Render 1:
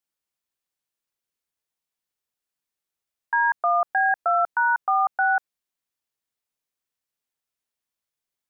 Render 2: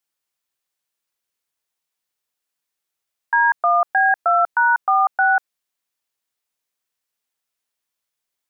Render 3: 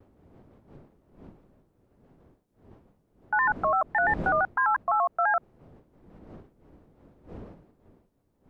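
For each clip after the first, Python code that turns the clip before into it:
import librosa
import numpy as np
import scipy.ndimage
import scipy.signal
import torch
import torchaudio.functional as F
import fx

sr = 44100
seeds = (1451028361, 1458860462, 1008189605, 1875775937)

y1 = fx.low_shelf(x, sr, hz=380.0, db=-6.5)
y1 = y1 * librosa.db_to_amplitude(5.5)
y2 = fx.dmg_wind(y1, sr, seeds[0], corner_hz=350.0, level_db=-38.0)
y2 = fx.vibrato_shape(y2, sr, shape='square', rate_hz=5.9, depth_cents=160.0)
y2 = y2 * librosa.db_to_amplitude(-8.0)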